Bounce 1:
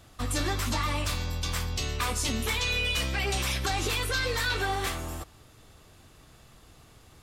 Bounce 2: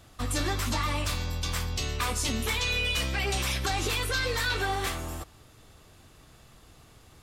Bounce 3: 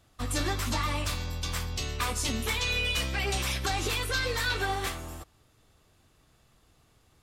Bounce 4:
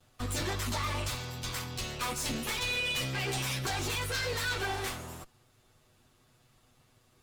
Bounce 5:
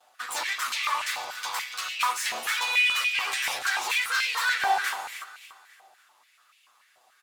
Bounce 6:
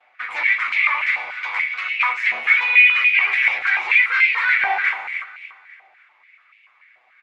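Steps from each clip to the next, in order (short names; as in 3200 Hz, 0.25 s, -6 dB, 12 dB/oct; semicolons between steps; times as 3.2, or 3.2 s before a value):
nothing audible
upward expander 1.5:1, over -45 dBFS
minimum comb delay 8.1 ms; soft clip -26 dBFS, distortion -17 dB
feedback echo 0.285 s, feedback 41%, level -12.5 dB; stepped high-pass 6.9 Hz 760–2500 Hz; gain +3 dB
synth low-pass 2200 Hz, resonance Q 8.9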